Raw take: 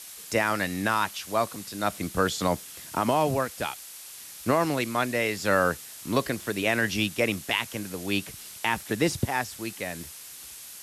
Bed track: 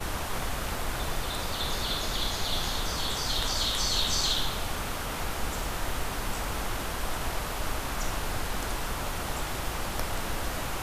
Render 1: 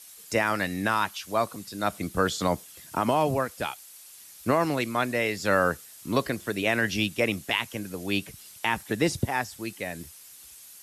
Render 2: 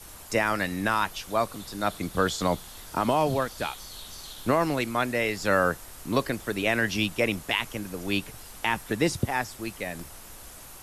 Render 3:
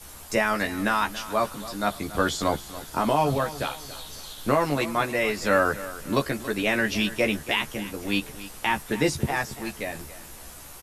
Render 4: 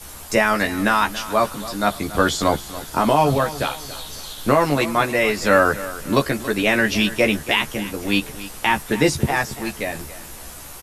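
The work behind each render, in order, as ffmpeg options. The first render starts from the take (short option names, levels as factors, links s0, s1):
-af "afftdn=nr=8:nf=-44"
-filter_complex "[1:a]volume=0.15[s0];[0:a][s0]amix=inputs=2:normalize=0"
-filter_complex "[0:a]asplit=2[s0][s1];[s1]adelay=14,volume=0.631[s2];[s0][s2]amix=inputs=2:normalize=0,aecho=1:1:280|560|840:0.168|0.0655|0.0255"
-af "volume=2,alimiter=limit=0.708:level=0:latency=1"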